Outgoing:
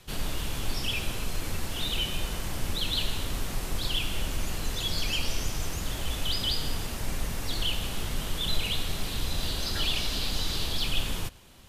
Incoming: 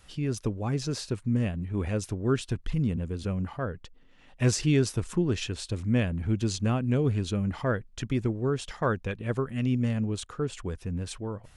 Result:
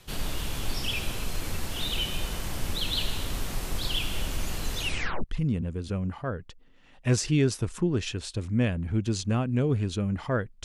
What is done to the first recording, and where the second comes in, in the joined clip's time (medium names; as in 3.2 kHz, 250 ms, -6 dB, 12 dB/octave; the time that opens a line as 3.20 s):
outgoing
4.79 s: tape stop 0.45 s
5.24 s: go over to incoming from 2.59 s